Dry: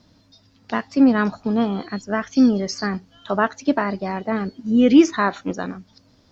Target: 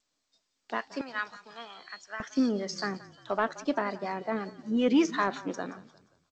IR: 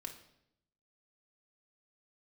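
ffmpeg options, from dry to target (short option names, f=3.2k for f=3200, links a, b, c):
-filter_complex "[0:a]agate=range=-33dB:threshold=-43dB:ratio=3:detection=peak,asetnsamples=n=441:p=0,asendcmd='1.01 highpass f 1400;2.2 highpass f 270',highpass=400,acrossover=split=580[a][b];[a]aeval=exprs='val(0)*(1-0.5/2+0.5/2*cos(2*PI*5.5*n/s))':c=same[c];[b]aeval=exprs='val(0)*(1-0.5/2-0.5/2*cos(2*PI*5.5*n/s))':c=same[d];[c][d]amix=inputs=2:normalize=0,asoftclip=type=tanh:threshold=-10dB,asplit=4[e][f][g][h];[f]adelay=176,afreqshift=-33,volume=-18.5dB[i];[g]adelay=352,afreqshift=-66,volume=-26dB[j];[h]adelay=528,afreqshift=-99,volume=-33.6dB[k];[e][i][j][k]amix=inputs=4:normalize=0,volume=-4dB" -ar 16000 -c:a g722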